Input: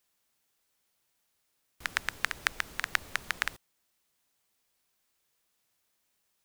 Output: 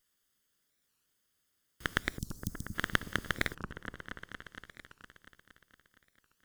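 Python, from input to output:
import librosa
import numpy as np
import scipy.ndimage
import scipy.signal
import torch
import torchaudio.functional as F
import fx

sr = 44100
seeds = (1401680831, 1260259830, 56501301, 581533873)

y = fx.lower_of_two(x, sr, delay_ms=0.61)
y = fx.cheby2_bandstop(y, sr, low_hz=620.0, high_hz=2200.0, order=4, stop_db=60, at=(2.19, 2.74), fade=0.02)
y = fx.echo_opening(y, sr, ms=232, hz=400, octaves=1, feedback_pct=70, wet_db=-6)
y = fx.record_warp(y, sr, rpm=45.0, depth_cents=250.0)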